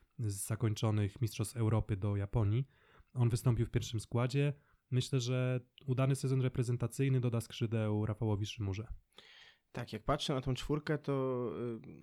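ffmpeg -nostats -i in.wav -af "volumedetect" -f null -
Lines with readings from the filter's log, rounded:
mean_volume: -35.1 dB
max_volume: -19.5 dB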